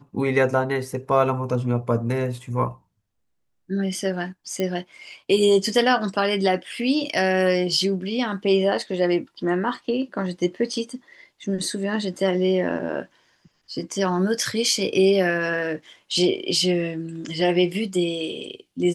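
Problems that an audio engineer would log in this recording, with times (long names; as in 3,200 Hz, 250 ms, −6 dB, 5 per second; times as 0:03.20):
0:04.60: click −13 dBFS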